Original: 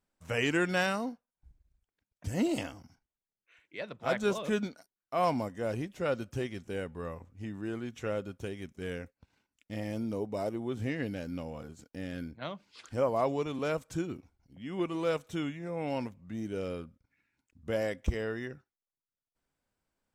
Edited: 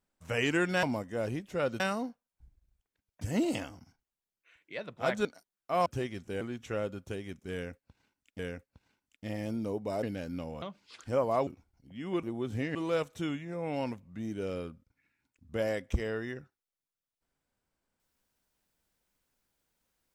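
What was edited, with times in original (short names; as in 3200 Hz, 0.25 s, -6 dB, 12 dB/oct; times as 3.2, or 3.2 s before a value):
4.28–4.68 cut
5.29–6.26 move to 0.83
6.81–7.74 cut
8.86–9.72 loop, 2 plays
10.5–11.02 move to 14.89
11.61–12.47 cut
13.32–14.13 cut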